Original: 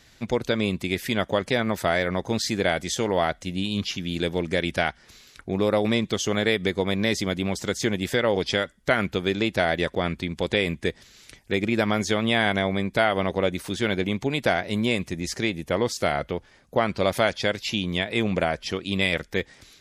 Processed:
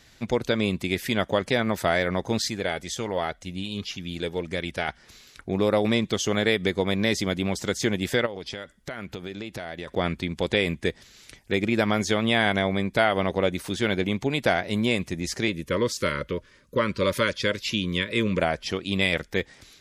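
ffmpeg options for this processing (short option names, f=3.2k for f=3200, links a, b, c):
-filter_complex "[0:a]asettb=1/sr,asplit=3[a][b][c];[a]atrim=end=2.484[d];[b]atrim=start=2.48:end=4.88,asetpts=PTS-STARTPTS,afade=t=in:d=0.004:c=qsin,afade=t=out:st=2.396:d=0.004:c=qsin,flanger=delay=0.8:depth=1.6:regen=63:speed=1.9:shape=sinusoidal[e];[c]atrim=start=4.876[f];[d][e]acrossfade=d=0.004:c1=hsin:c2=qsin[g];[g][f]acrossfade=d=0.004:c1=qsin:c2=hsin,asplit=3[h][i][j];[h]afade=t=out:st=8.25:d=0.02[k];[i]acompressor=threshold=-32dB:ratio=5:attack=3.2:release=140:knee=1:detection=peak,afade=t=in:st=8.25:d=0.02,afade=t=out:st=9.87:d=0.02[l];[j]afade=t=in:st=9.87:d=0.02[m];[k][l][m]amix=inputs=3:normalize=0,asettb=1/sr,asplit=3[n][o][p];[n]atrim=end=15.484[q];[o]atrim=start=15.48:end=18.4,asetpts=PTS-STARTPTS,afade=t=in:d=0.004:c=qsin,afade=t=out:st=2.916:d=0.004:c=qsin,asuperstop=centerf=750:order=20:qfactor=2.4[r];[p]atrim=start=18.396[s];[q][r]acrossfade=d=0.004:c1=hsin:c2=qsin[t];[t][s]acrossfade=d=0.004:c1=qsin:c2=hsin"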